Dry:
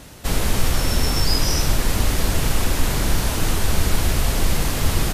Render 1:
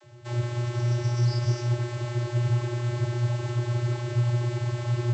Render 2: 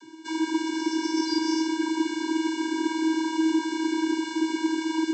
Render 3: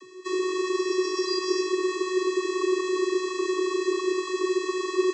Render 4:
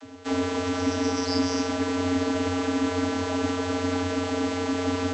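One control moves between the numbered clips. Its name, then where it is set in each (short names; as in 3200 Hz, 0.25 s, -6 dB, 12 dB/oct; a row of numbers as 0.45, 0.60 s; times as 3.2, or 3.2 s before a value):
vocoder, frequency: 120, 320, 370, 90 Hz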